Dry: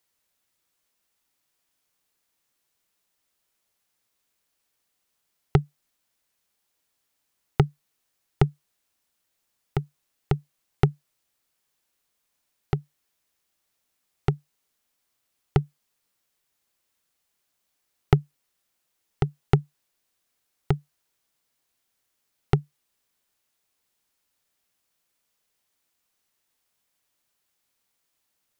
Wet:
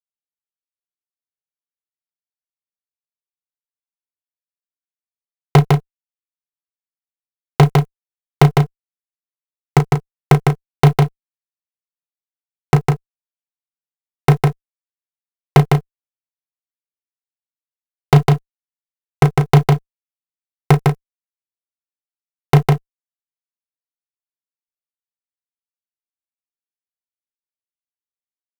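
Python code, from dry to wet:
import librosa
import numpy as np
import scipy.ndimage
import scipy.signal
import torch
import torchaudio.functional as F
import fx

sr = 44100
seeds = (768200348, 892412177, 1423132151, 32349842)

p1 = fx.highpass(x, sr, hz=130.0, slope=6)
p2 = fx.peak_eq(p1, sr, hz=670.0, db=5.0, octaves=0.76)
p3 = fx.quant_dither(p2, sr, seeds[0], bits=6, dither='none')
p4 = p2 + (p3 * 10.0 ** (-4.5 / 20.0))
p5 = fx.fuzz(p4, sr, gain_db=29.0, gate_db=-29.0)
p6 = fx.doubler(p5, sr, ms=34.0, db=-9.5)
p7 = p6 + fx.echo_single(p6, sr, ms=154, db=-3.5, dry=0)
y = p7 * 10.0 ** (8.5 / 20.0)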